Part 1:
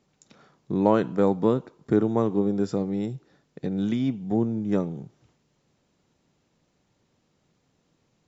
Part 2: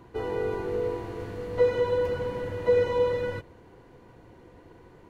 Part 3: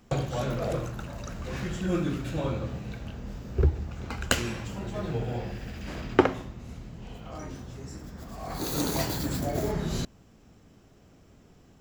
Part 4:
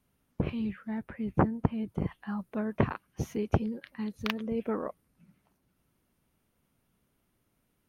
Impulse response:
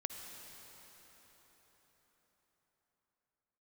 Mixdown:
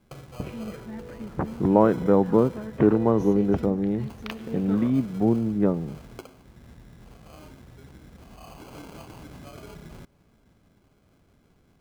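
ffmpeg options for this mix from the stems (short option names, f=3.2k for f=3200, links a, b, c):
-filter_complex "[0:a]lowpass=1.6k,adelay=900,volume=2.5dB[a];[1:a]adelay=250,volume=-16dB[b];[2:a]acompressor=threshold=-37dB:ratio=3,acrusher=samples=24:mix=1:aa=0.000001,volume=-6.5dB,asplit=2[c][d];[d]volume=-17.5dB[e];[3:a]volume=-7.5dB,asplit=2[f][g];[g]volume=-4dB[h];[4:a]atrim=start_sample=2205[i];[e][h]amix=inputs=2:normalize=0[j];[j][i]afir=irnorm=-1:irlink=0[k];[a][b][c][f][k]amix=inputs=5:normalize=0"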